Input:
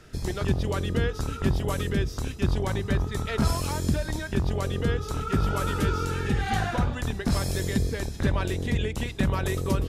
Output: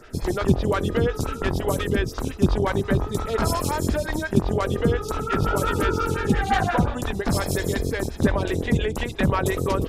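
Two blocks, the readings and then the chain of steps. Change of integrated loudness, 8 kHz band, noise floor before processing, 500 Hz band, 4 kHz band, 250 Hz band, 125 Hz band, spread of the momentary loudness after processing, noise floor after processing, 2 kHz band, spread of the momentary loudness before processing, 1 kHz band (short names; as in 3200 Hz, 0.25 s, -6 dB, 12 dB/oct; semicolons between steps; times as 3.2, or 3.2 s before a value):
+4.0 dB, +3.5 dB, -37 dBFS, +7.0 dB, +2.0 dB, +4.5 dB, +1.5 dB, 4 LU, -35 dBFS, +4.5 dB, 3 LU, +6.5 dB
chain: photocell phaser 5.7 Hz; gain +8.5 dB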